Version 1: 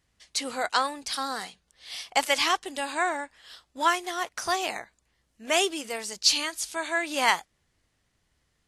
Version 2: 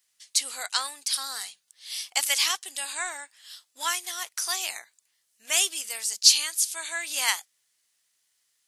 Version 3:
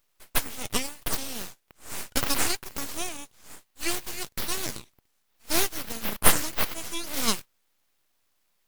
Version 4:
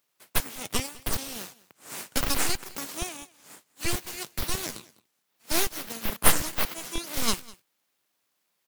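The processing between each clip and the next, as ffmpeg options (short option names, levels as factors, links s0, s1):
-af "aderivative,volume=2.51"
-af "aeval=exprs='abs(val(0))':c=same,volume=1.19"
-filter_complex "[0:a]acrossover=split=110[s0][s1];[s0]acrusher=bits=4:mix=0:aa=0.000001[s2];[s2][s1]amix=inputs=2:normalize=0,aecho=1:1:201:0.0794,volume=0.891"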